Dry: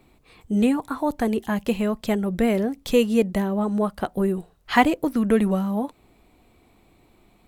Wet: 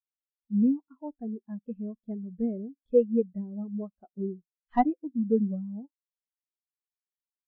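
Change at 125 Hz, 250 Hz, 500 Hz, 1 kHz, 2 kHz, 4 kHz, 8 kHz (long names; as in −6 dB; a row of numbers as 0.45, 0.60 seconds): can't be measured, −7.0 dB, −6.5 dB, −7.5 dB, −23.0 dB, below −30 dB, below −35 dB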